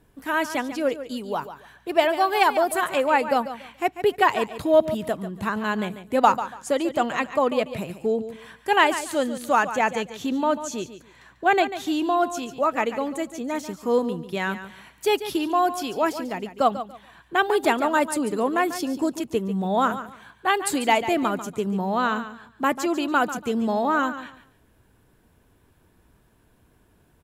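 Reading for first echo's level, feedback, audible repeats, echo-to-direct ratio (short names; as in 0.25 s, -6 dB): -12.0 dB, 23%, 2, -12.0 dB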